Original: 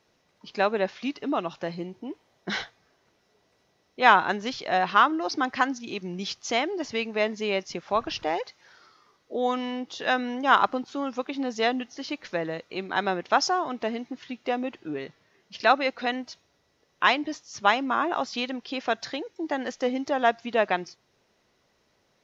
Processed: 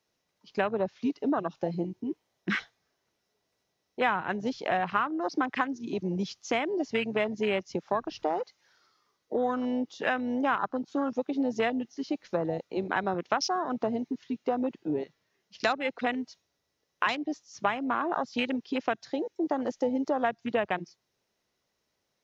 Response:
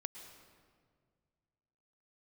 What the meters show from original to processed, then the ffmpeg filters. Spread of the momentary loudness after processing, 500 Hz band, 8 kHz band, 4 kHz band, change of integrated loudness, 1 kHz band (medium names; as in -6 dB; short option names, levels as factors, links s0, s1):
6 LU, -2.0 dB, no reading, -8.0 dB, -4.0 dB, -6.0 dB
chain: -filter_complex "[0:a]crystalizer=i=1.5:c=0,afwtdn=0.0355,acrossover=split=160[s0][s1];[s1]acompressor=threshold=0.0355:ratio=5[s2];[s0][s2]amix=inputs=2:normalize=0,volume=1.58"